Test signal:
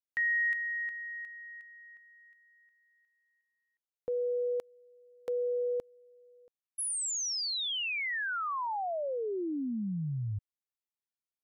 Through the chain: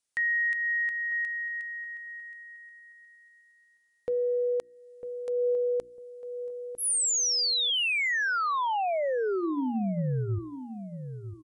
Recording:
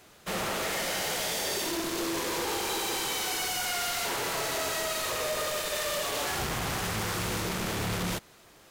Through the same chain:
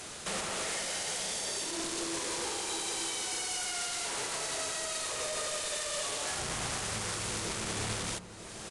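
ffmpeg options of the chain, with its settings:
-filter_complex "[0:a]aemphasis=mode=production:type=50kf,bandreject=f=60:t=h:w=6,bandreject=f=120:t=h:w=6,bandreject=f=180:t=h:w=6,bandreject=f=240:t=h:w=6,bandreject=f=300:t=h:w=6,bandreject=f=360:t=h:w=6,acompressor=threshold=0.0224:ratio=16:attack=0.16:release=362:knee=6:detection=rms,asplit=2[s0][s1];[s1]adelay=951,lowpass=f=980:p=1,volume=0.316,asplit=2[s2][s3];[s3]adelay=951,lowpass=f=980:p=1,volume=0.29,asplit=2[s4][s5];[s5]adelay=951,lowpass=f=980:p=1,volume=0.29[s6];[s0][s2][s4][s6]amix=inputs=4:normalize=0,aresample=22050,aresample=44100,volume=2.82"

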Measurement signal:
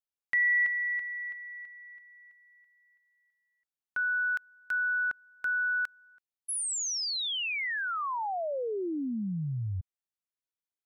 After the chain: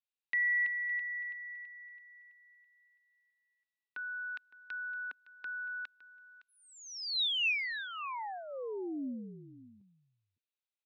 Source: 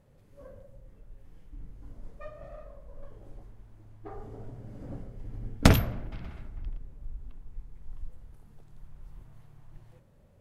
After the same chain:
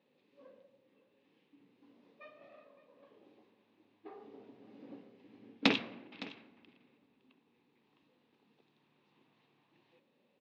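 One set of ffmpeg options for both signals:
-af "highpass=f=240:w=0.5412,highpass=f=240:w=1.3066,equalizer=f=260:t=q:w=4:g=3,equalizer=f=640:t=q:w=4:g=-8,equalizer=f=1400:t=q:w=4:g=-7,equalizer=f=2600:t=q:w=4:g=9,equalizer=f=3800:t=q:w=4:g=8,lowpass=f=4700:w=0.5412,lowpass=f=4700:w=1.3066,aecho=1:1:562:0.133,volume=0.531"

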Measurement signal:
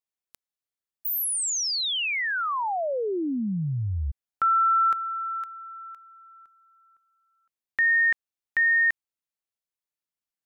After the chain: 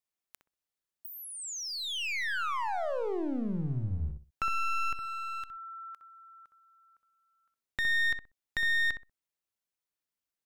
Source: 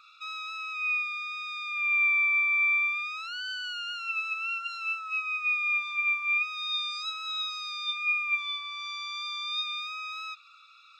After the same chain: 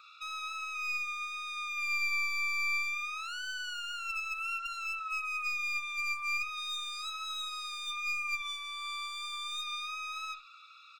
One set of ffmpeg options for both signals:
-filter_complex "[0:a]acrossover=split=2400|5000[s0][s1][s2];[s0]acompressor=threshold=0.0141:ratio=1.5[s3];[s1]acompressor=threshold=0.00562:ratio=3[s4];[s2]acompressor=threshold=0.00501:ratio=6[s5];[s3][s4][s5]amix=inputs=3:normalize=0,aeval=exprs='clip(val(0),-1,0.0158)':c=same,asplit=2[s6][s7];[s7]adelay=63,lowpass=f=1100:p=1,volume=0.562,asplit=2[s8][s9];[s9]adelay=63,lowpass=f=1100:p=1,volume=0.23,asplit=2[s10][s11];[s11]adelay=63,lowpass=f=1100:p=1,volume=0.23[s12];[s6][s8][s10][s12]amix=inputs=4:normalize=0"

